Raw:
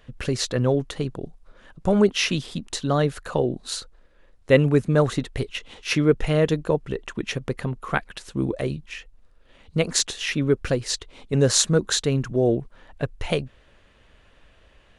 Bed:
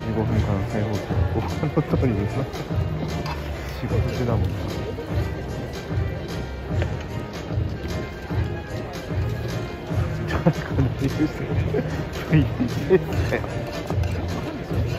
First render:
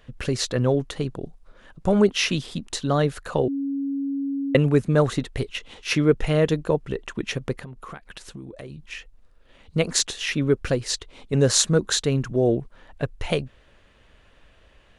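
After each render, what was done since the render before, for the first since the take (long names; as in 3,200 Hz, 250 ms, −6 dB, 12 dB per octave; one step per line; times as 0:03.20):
0:03.48–0:04.55: beep over 277 Hz −23.5 dBFS
0:07.55–0:08.88: downward compressor 10 to 1, threshold −34 dBFS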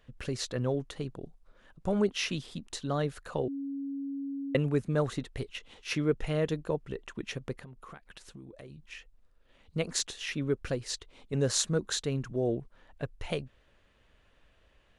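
level −9.5 dB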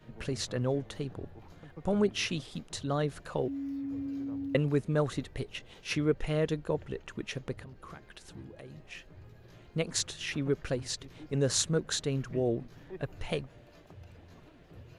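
mix in bed −27.5 dB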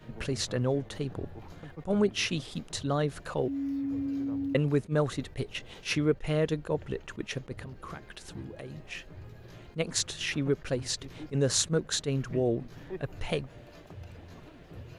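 in parallel at −1 dB: downward compressor, threshold −37 dBFS, peak gain reduction 14.5 dB
on the sum: level that may rise only so fast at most 380 dB per second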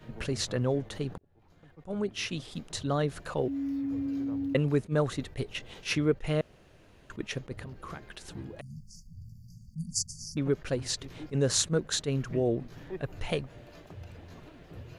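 0:01.18–0:02.93: fade in
0:06.41–0:07.10: fill with room tone
0:08.61–0:10.37: linear-phase brick-wall band-stop 240–4,500 Hz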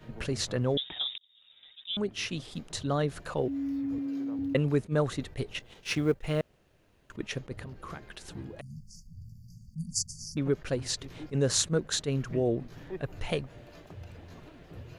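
0:00.77–0:01.97: voice inversion scrambler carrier 3,700 Hz
0:03.98–0:04.39: high-pass filter 210 Hz
0:05.59–0:07.15: mu-law and A-law mismatch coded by A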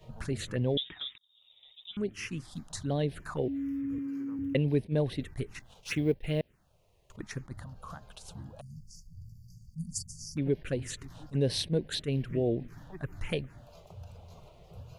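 phaser swept by the level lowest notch 240 Hz, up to 1,300 Hz, full sweep at −26 dBFS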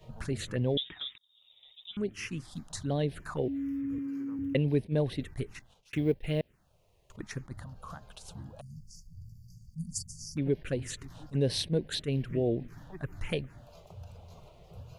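0:05.48–0:05.93: fade out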